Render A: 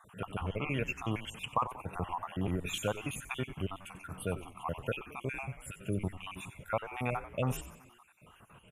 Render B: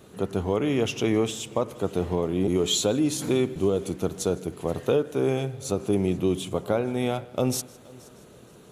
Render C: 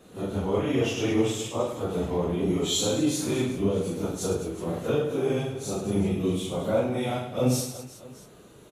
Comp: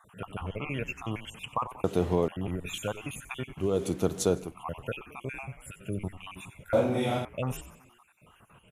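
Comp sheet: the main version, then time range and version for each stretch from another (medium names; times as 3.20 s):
A
1.84–2.28 s: from B
3.68–4.45 s: from B, crossfade 0.24 s
6.73–7.25 s: from C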